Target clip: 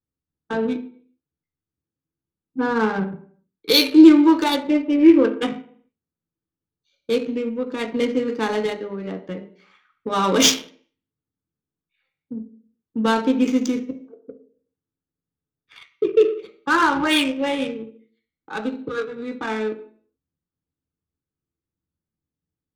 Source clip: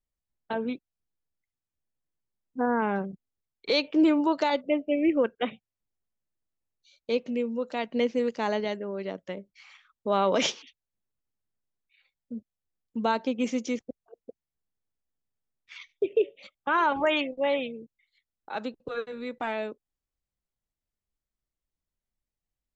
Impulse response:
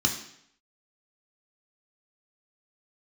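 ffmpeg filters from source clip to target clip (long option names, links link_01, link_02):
-filter_complex "[0:a]crystalizer=i=4:c=0[link_01];[1:a]atrim=start_sample=2205,asetrate=52920,aresample=44100[link_02];[link_01][link_02]afir=irnorm=-1:irlink=0,adynamicsmooth=sensitivity=1:basefreq=1100,volume=-4dB"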